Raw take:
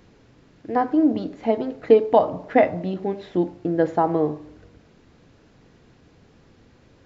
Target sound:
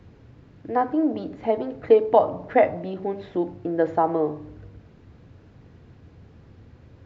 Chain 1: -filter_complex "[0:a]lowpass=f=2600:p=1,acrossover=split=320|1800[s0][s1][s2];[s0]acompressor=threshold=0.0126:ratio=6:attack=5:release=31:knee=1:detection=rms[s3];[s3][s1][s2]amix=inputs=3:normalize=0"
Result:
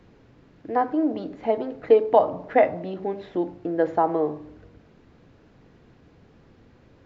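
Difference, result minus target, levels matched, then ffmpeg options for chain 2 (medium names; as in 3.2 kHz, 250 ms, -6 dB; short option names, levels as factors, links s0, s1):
125 Hz band -3.0 dB
-filter_complex "[0:a]lowpass=f=2600:p=1,equalizer=f=88:w=1:g=11,acrossover=split=320|1800[s0][s1][s2];[s0]acompressor=threshold=0.0126:ratio=6:attack=5:release=31:knee=1:detection=rms[s3];[s3][s1][s2]amix=inputs=3:normalize=0"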